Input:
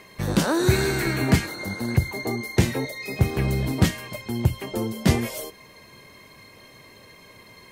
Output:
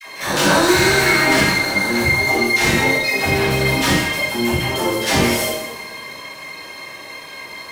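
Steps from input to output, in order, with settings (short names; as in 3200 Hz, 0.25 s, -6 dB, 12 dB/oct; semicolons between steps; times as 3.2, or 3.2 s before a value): stepped spectrum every 50 ms; dispersion lows, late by 69 ms, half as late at 790 Hz; overdrive pedal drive 23 dB, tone 6600 Hz, clips at -8.5 dBFS; in parallel at -6 dB: crossover distortion -35.5 dBFS; on the sum: two-slope reverb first 0.8 s, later 2.5 s, from -17 dB, DRR -6.5 dB; expander -38 dBFS; gain -8 dB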